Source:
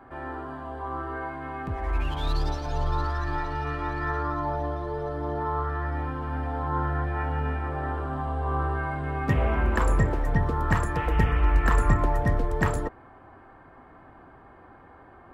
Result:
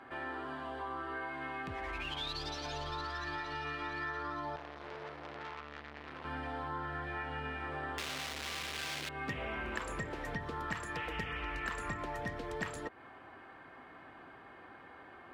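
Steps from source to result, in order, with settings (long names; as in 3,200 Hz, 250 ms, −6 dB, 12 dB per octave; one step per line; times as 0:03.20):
0:07.98–0:09.09: sign of each sample alone
meter weighting curve D
downward compressor 4 to 1, threshold −34 dBFS, peak gain reduction 14.5 dB
0:04.56–0:06.25: saturating transformer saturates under 2,100 Hz
level −3.5 dB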